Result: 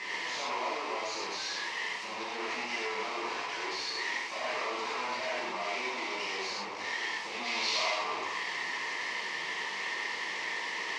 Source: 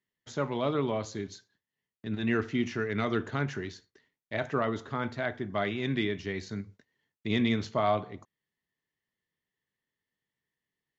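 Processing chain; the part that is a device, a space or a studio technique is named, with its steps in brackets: home computer beeper (infinite clipping; speaker cabinet 550–5400 Hz, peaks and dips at 620 Hz -3 dB, 980 Hz +9 dB, 1500 Hz -9 dB, 2200 Hz +5 dB, 3400 Hz -5 dB); 7.44–7.91 bell 4300 Hz +9 dB 2.3 oct; non-linear reverb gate 0.16 s flat, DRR -6.5 dB; gain -5.5 dB

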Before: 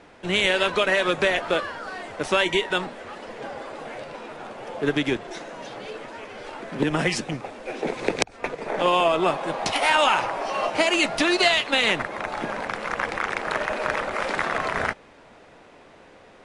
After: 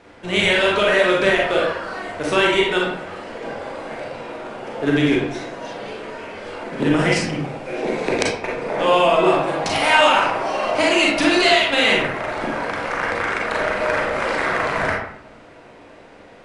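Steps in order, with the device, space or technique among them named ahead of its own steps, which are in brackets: bathroom (reverb RT60 0.75 s, pre-delay 32 ms, DRR -3.5 dB)

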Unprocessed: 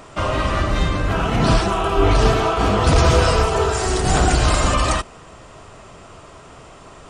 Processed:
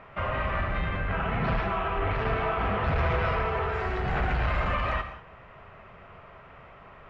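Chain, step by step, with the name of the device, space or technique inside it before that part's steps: overdriven synthesiser ladder filter (soft clip -13.5 dBFS, distortion -13 dB; ladder low-pass 2600 Hz, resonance 40%); bell 310 Hz -10 dB 0.38 oct; non-linear reverb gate 0.22 s flat, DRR 8.5 dB

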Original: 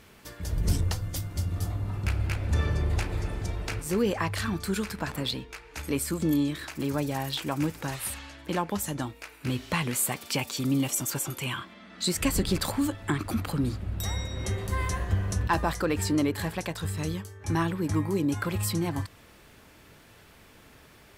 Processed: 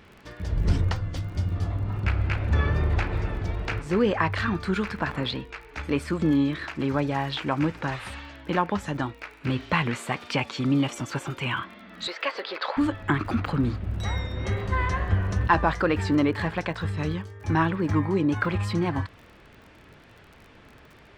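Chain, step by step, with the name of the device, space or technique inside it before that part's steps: 12.07–12.77 Chebyshev band-pass 490–4700 Hz, order 3; lo-fi chain (LPF 3300 Hz 12 dB/oct; wow and flutter; crackle 35/s -44 dBFS); dynamic EQ 1400 Hz, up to +4 dB, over -44 dBFS, Q 0.83; gain +3 dB

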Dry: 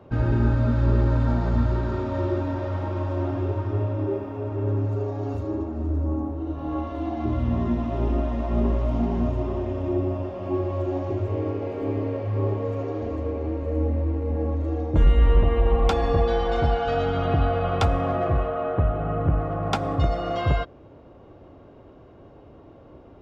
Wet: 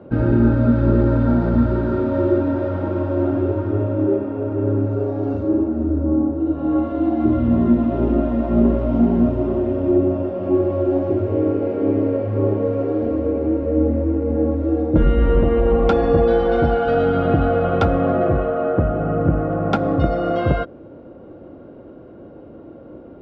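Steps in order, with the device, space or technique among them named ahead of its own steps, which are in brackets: inside a cardboard box (LPF 4400 Hz 12 dB/oct; small resonant body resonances 220/320/500/1400 Hz, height 11 dB, ringing for 25 ms); gain -1 dB

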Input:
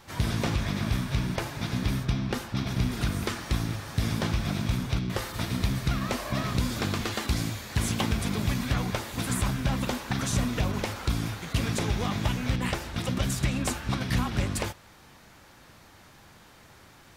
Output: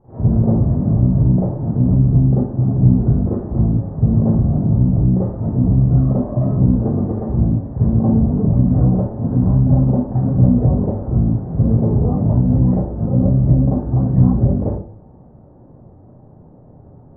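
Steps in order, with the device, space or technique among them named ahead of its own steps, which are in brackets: next room (LPF 660 Hz 24 dB/oct; reverb RT60 0.45 s, pre-delay 35 ms, DRR -9 dB); gain +1.5 dB

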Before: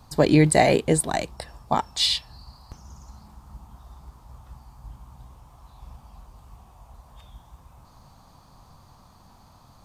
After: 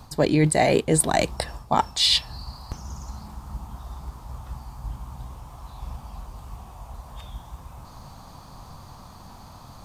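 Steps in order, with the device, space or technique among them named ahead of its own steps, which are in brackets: compression on the reversed sound (reverse; compressor 6:1, threshold -25 dBFS, peak gain reduction 12.5 dB; reverse); gain +8.5 dB

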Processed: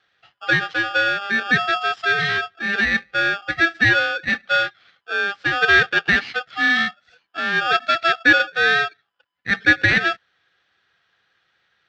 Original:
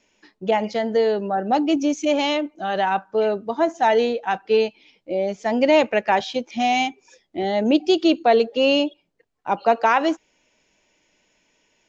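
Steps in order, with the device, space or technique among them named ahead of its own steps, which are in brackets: ring modulator pedal into a guitar cabinet (polarity switched at an audio rate 1000 Hz; speaker cabinet 94–4100 Hz, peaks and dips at 250 Hz -5 dB, 390 Hz -6 dB, 610 Hz -8 dB, 980 Hz -9 dB, 1700 Hz +7 dB)

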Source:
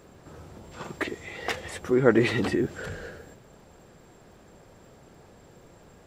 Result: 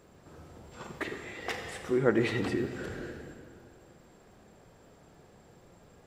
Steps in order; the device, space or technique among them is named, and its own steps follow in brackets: compressed reverb return (on a send at -4 dB: reverb RT60 2.1 s, pre-delay 27 ms + compressor, threshold -25 dBFS, peak gain reduction 9 dB); on the sum: gain -6 dB

